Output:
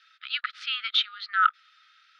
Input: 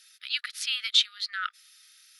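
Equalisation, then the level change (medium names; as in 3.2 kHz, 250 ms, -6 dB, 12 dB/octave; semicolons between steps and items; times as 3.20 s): resonant high-pass 1.3 kHz, resonance Q 8.5; four-pole ladder low-pass 4.2 kHz, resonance 30%; +2.0 dB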